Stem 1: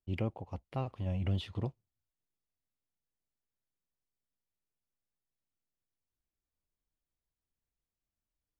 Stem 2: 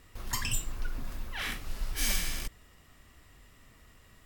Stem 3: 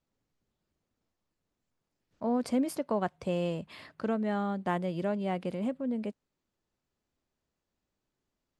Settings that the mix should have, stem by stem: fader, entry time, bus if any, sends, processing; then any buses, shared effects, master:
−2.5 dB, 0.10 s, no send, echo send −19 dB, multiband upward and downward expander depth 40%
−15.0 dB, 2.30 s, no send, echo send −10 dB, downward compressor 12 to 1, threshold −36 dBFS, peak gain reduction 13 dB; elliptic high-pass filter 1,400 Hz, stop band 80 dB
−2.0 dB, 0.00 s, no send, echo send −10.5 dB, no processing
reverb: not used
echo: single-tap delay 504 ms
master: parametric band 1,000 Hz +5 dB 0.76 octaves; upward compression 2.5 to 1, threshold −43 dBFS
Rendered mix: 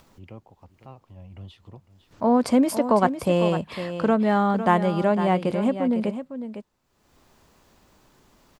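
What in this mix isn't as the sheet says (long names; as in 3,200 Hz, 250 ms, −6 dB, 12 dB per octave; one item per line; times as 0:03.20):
stem 1 −2.5 dB → −10.0 dB
stem 2 −15.0 dB → −23.0 dB
stem 3 −2.0 dB → +9.5 dB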